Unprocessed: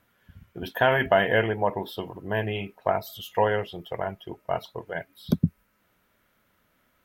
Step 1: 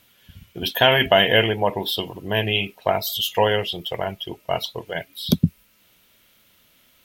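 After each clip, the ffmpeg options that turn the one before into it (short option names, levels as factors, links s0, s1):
-af "highshelf=f=2200:t=q:w=1.5:g=10,volume=1.68"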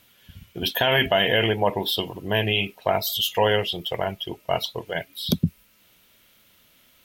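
-af "alimiter=limit=0.355:level=0:latency=1:release=33"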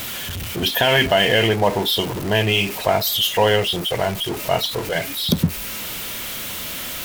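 -af "aeval=exprs='val(0)+0.5*0.0501*sgn(val(0))':c=same,volume=1.33"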